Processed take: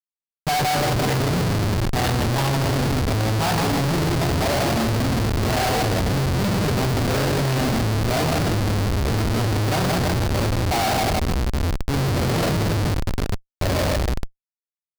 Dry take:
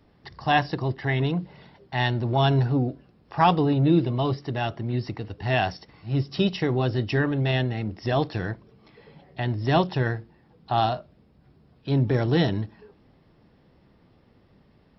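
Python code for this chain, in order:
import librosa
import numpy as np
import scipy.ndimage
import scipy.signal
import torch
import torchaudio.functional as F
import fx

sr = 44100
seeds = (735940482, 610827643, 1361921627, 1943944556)

y = x + 0.33 * np.pad(x, (int(1.4 * sr / 1000.0), 0))[:len(x)]
y = fx.echo_pitch(y, sr, ms=116, semitones=-4, count=3, db_per_echo=-6.0)
y = fx.echo_tape(y, sr, ms=157, feedback_pct=56, wet_db=-3.0, lp_hz=1600.0, drive_db=7.0, wow_cents=23)
y = fx.rev_double_slope(y, sr, seeds[0], early_s=0.61, late_s=2.4, knee_db=-19, drr_db=1.5)
y = fx.schmitt(y, sr, flips_db=-24.0)
y = fx.peak_eq(y, sr, hz=4600.0, db=4.5, octaves=0.45)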